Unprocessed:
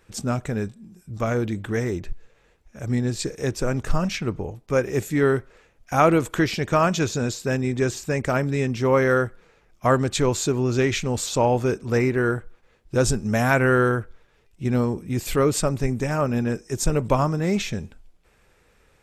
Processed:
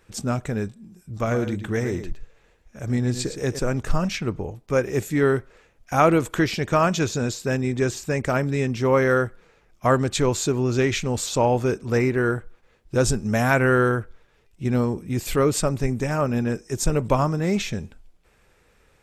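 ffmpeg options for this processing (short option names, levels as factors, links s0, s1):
-filter_complex "[0:a]asettb=1/sr,asplit=3[s0][s1][s2];[s0]atrim=end=1.144[s3];[s1]atrim=start=1.14:end=3.59,asetpts=PTS-STARTPTS,afade=t=in:d=0.004:c=qsin,afade=t=out:st=2.446:d=0.004:c=qsin,aecho=1:1:113:0.335,atrim=end_sample=108045[s4];[s2]atrim=start=3.586[s5];[s3][s4]acrossfade=d=0.004:c1=hsin:c2=qsin[s6];[s6][s5]acrossfade=d=0.004:c1=qsin:c2=hsin"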